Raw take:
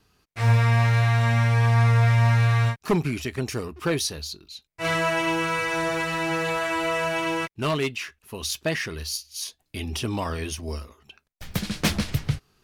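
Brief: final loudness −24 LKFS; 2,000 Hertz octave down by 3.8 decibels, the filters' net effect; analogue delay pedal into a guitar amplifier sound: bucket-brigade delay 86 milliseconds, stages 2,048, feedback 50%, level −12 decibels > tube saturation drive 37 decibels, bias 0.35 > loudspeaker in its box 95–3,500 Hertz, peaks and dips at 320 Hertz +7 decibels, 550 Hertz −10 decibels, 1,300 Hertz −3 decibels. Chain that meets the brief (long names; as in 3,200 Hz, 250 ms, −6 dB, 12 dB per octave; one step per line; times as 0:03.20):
parametric band 2,000 Hz −4 dB
bucket-brigade delay 86 ms, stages 2,048, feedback 50%, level −12 dB
tube saturation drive 37 dB, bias 0.35
loudspeaker in its box 95–3,500 Hz, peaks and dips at 320 Hz +7 dB, 550 Hz −10 dB, 1,300 Hz −3 dB
level +16 dB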